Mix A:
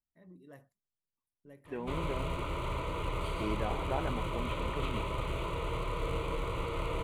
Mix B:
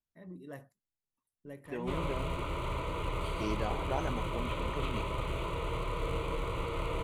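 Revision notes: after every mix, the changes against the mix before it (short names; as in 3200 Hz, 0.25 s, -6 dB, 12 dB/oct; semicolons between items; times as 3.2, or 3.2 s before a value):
first voice +7.5 dB; second voice: remove LPF 2500 Hz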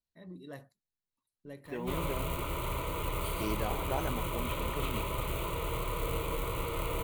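first voice: add bell 4100 Hz +14 dB 0.36 oct; background: remove air absorption 78 m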